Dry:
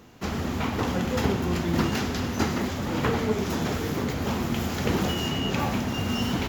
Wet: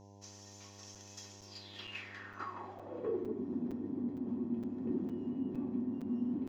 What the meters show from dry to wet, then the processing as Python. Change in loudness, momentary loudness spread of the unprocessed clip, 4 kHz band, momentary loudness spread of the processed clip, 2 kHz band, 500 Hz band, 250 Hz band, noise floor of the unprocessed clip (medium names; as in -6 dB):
-13.0 dB, 3 LU, -20.0 dB, 14 LU, -19.5 dB, -13.5 dB, -10.0 dB, -31 dBFS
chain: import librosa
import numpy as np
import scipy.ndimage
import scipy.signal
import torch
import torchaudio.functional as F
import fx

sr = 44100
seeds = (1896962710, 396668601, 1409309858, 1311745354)

y = fx.peak_eq(x, sr, hz=290.0, db=5.0, octaves=0.51)
y = fx.filter_sweep_bandpass(y, sr, from_hz=6000.0, to_hz=250.0, start_s=1.4, end_s=3.47, q=5.1)
y = fx.comb_fb(y, sr, f0_hz=370.0, decay_s=0.16, harmonics='odd', damping=0.0, mix_pct=80)
y = fx.dmg_buzz(y, sr, base_hz=100.0, harmonics=10, level_db=-63.0, tilt_db=-4, odd_only=False)
y = fx.buffer_crackle(y, sr, first_s=0.95, period_s=0.46, block=256, kind='zero')
y = y * librosa.db_to_amplitude(6.5)